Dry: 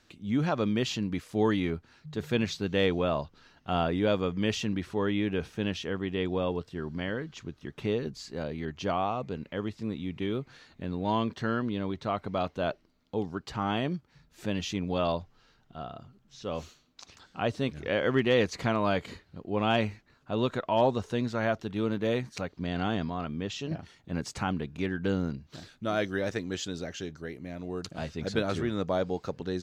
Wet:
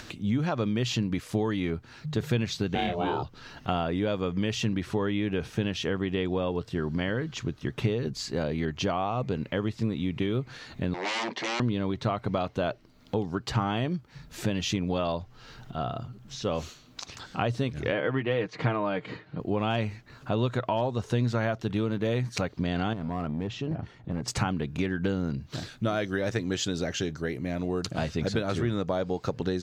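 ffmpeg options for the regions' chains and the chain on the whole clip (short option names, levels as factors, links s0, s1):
-filter_complex "[0:a]asettb=1/sr,asplit=3[s0][s1][s2];[s0]atrim=end=2.754[s3];[s1]atrim=start=2.75:end=3.23,asetpts=PTS-STARTPTS,afade=t=in:d=0.004:c=qsin,afade=t=out:st=0.476:d=0.004:c=qsin,aeval=exprs='val(0)*sin(2*PI*260*n/s)':c=same,highpass=100,asplit=2[s4][s5];[s5]adelay=28,volume=0.708[s6];[s4][s6]amix=inputs=2:normalize=0,atrim=end_sample=21168[s7];[s2]atrim=start=3.226[s8];[s3][s7]acrossfade=d=0.004:c1=hsin:c2=qsin[s9];[s9][s8]acrossfade=d=0.004:c1=qsin:c2=hsin,asettb=1/sr,asplit=3[s10][s11][s12];[s10]atrim=end=10.944[s13];[s11]atrim=start=10.94:end=11.6,asetpts=PTS-STARTPTS,afade=t=in:d=0.004:c=qsin,afade=t=out:st=0.656:d=0.004:c=qsin,aeval=exprs='0.02*(abs(mod(val(0)/0.02+3,4)-2)-1)':c=same,highpass=f=230:w=0.5412,highpass=f=230:w=1.3066,equalizer=f=900:t=q:w=4:g=6,equalizer=f=1400:t=q:w=4:g=-6,equalizer=f=2100:t=q:w=4:g=7,lowpass=f=6600:w=0.5412,lowpass=f=6600:w=1.3066[s14];[s12]atrim=start=11.596[s15];[s13][s14]acrossfade=d=0.004:c1=hsin:c2=qsin[s16];[s16][s15]acrossfade=d=0.004:c1=qsin:c2=hsin,asettb=1/sr,asplit=3[s17][s18][s19];[s17]atrim=end=17.924[s20];[s18]atrim=start=17.92:end=19.4,asetpts=PTS-STARTPTS,afade=t=in:d=0.004:c=qsin,afade=t=out:st=1.476:d=0.004:c=qsin,highpass=140,lowpass=2800,aecho=1:1:6.5:0.49,atrim=end_sample=65268[s21];[s19]atrim=start=19.396[s22];[s20][s21]acrossfade=d=0.004:c1=hsin:c2=qsin[s23];[s23][s22]acrossfade=d=0.004:c1=qsin:c2=hsin,asettb=1/sr,asplit=3[s24][s25][s26];[s24]atrim=end=22.934[s27];[s25]atrim=start=22.93:end=24.28,asetpts=PTS-STARTPTS,afade=t=in:d=0.004:c=qsin,afade=t=out:st=1.346:d=0.004:c=qsin,lowpass=f=1100:p=1,aeval=exprs='clip(val(0),-1,0.0335)':c=same,acompressor=threshold=0.0112:ratio=2:attack=3.2:release=140:knee=1:detection=peak[s28];[s26]atrim=start=24.276[s29];[s27][s28]acrossfade=d=0.004:c1=hsin:c2=qsin[s30];[s30][s29]acrossfade=d=0.004:c1=qsin:c2=hsin,acompressor=threshold=0.0224:ratio=10,equalizer=f=120:t=o:w=0.22:g=9.5,acompressor=mode=upward:threshold=0.00631:ratio=2.5,volume=2.66"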